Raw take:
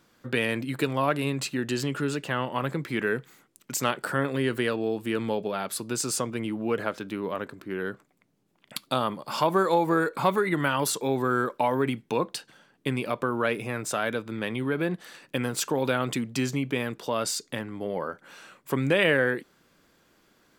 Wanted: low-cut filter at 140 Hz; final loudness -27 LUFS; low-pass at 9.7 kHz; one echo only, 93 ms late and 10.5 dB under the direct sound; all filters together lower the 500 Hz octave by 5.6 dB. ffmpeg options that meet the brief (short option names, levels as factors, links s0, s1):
-af "highpass=140,lowpass=9700,equalizer=f=500:t=o:g=-7,aecho=1:1:93:0.299,volume=1.41"